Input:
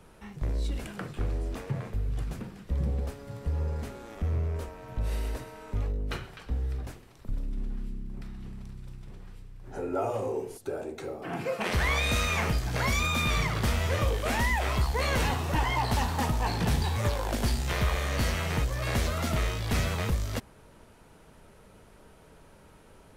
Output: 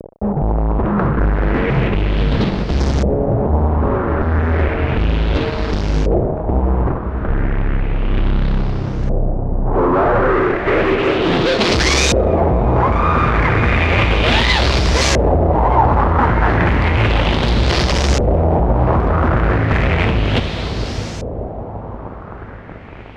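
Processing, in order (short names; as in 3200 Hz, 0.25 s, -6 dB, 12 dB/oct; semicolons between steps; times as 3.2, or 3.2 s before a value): Wiener smoothing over 41 samples; dynamic EQ 350 Hz, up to +6 dB, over -52 dBFS, Q 3.5; fuzz box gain 50 dB, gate -50 dBFS; diffused feedback echo 0.607 s, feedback 60%, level -7 dB; LFO low-pass saw up 0.33 Hz 550–6500 Hz; gain -1.5 dB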